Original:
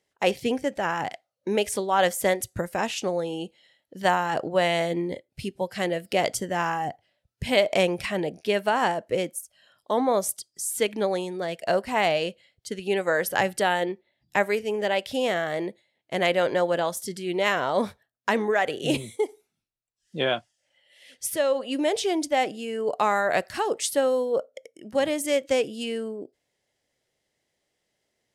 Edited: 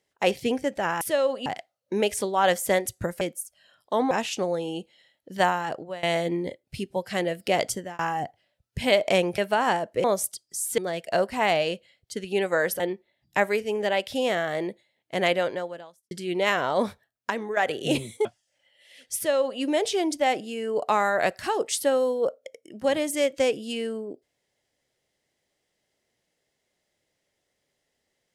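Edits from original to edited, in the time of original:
0:04.10–0:04.68: fade out, to −22 dB
0:06.36–0:06.64: fade out
0:08.03–0:08.53: remove
0:09.19–0:10.09: move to 0:02.76
0:10.83–0:11.33: remove
0:13.35–0:13.79: remove
0:16.30–0:17.10: fade out quadratic
0:18.29–0:18.56: clip gain −7 dB
0:19.24–0:20.36: remove
0:21.27–0:21.72: duplicate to 0:01.01

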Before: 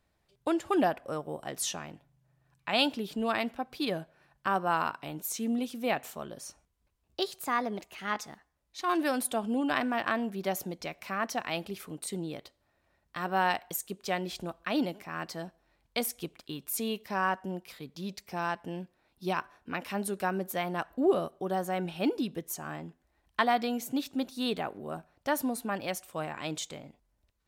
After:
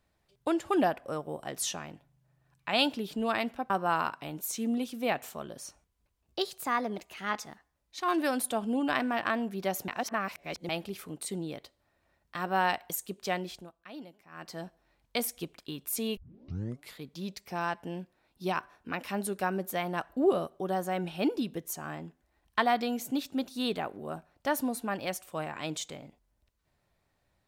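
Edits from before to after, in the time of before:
0:03.70–0:04.51: remove
0:10.69–0:11.50: reverse
0:14.16–0:15.46: duck −15.5 dB, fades 0.36 s
0:16.98: tape start 0.80 s

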